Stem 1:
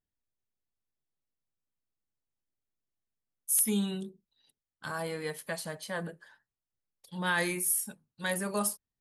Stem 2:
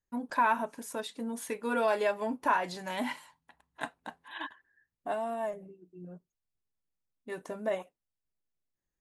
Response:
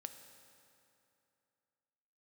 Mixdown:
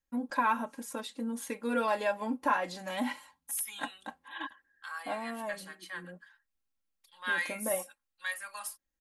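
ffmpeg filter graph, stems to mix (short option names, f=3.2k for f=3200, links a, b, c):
-filter_complex "[0:a]highpass=f=1.2k:t=q:w=1.5,equalizer=f=2.3k:w=0.96:g=6.5,volume=-10.5dB[a];[1:a]volume=-2dB[b];[a][b]amix=inputs=2:normalize=0,aecho=1:1:3.7:0.68"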